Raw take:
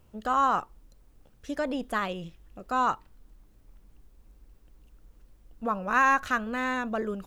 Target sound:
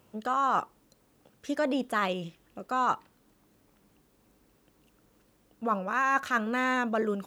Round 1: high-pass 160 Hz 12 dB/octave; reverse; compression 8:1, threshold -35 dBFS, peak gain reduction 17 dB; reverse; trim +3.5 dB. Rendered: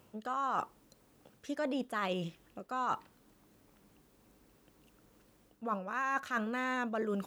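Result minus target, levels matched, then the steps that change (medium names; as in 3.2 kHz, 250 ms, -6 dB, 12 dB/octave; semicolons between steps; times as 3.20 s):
compression: peak gain reduction +8 dB
change: compression 8:1, threshold -26 dBFS, peak gain reduction 9 dB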